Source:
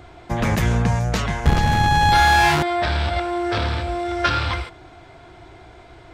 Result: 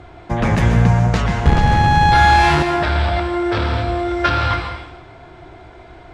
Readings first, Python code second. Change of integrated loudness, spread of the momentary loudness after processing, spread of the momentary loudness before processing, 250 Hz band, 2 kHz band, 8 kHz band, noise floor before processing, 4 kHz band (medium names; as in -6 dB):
+3.5 dB, 9 LU, 11 LU, +5.0 dB, +2.0 dB, -3.0 dB, -45 dBFS, 0.0 dB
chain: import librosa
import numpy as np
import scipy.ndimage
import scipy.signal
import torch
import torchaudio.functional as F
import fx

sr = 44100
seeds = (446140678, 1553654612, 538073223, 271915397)

y = scipy.signal.sosfilt(scipy.signal.butter(4, 11000.0, 'lowpass', fs=sr, output='sos'), x)
y = fx.high_shelf(y, sr, hz=4100.0, db=-9.5)
y = fx.rev_plate(y, sr, seeds[0], rt60_s=0.91, hf_ratio=0.95, predelay_ms=115, drr_db=6.0)
y = y * 10.0 ** (3.5 / 20.0)